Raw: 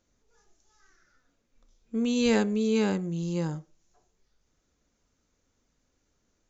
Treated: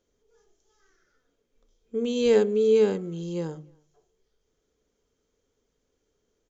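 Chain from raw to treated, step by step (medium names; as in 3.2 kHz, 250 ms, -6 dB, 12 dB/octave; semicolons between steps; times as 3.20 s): de-hum 74.72 Hz, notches 5; small resonant body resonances 430/3200 Hz, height 14 dB, ringing for 35 ms; speakerphone echo 290 ms, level -29 dB; trim -4 dB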